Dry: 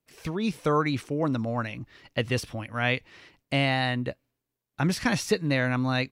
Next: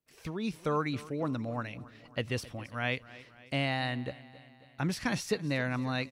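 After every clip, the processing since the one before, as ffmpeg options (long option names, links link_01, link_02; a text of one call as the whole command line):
ffmpeg -i in.wav -af "aecho=1:1:271|542|813|1084|1355:0.112|0.064|0.0365|0.0208|0.0118,volume=-6.5dB" out.wav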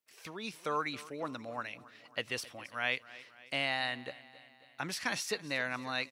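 ffmpeg -i in.wav -af "highpass=frequency=980:poles=1,volume=2dB" out.wav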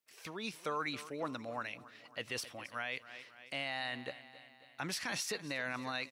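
ffmpeg -i in.wav -af "alimiter=level_in=3dB:limit=-24dB:level=0:latency=1:release=11,volume=-3dB" out.wav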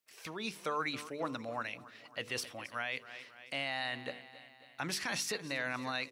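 ffmpeg -i in.wav -af "bandreject=frequency=48.9:width_type=h:width=4,bandreject=frequency=97.8:width_type=h:width=4,bandreject=frequency=146.7:width_type=h:width=4,bandreject=frequency=195.6:width_type=h:width=4,bandreject=frequency=244.5:width_type=h:width=4,bandreject=frequency=293.4:width_type=h:width=4,bandreject=frequency=342.3:width_type=h:width=4,bandreject=frequency=391.2:width_type=h:width=4,bandreject=frequency=440.1:width_type=h:width=4,bandreject=frequency=489:width_type=h:width=4,volume=2dB" out.wav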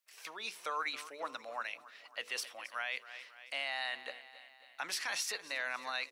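ffmpeg -i in.wav -af "highpass=680" out.wav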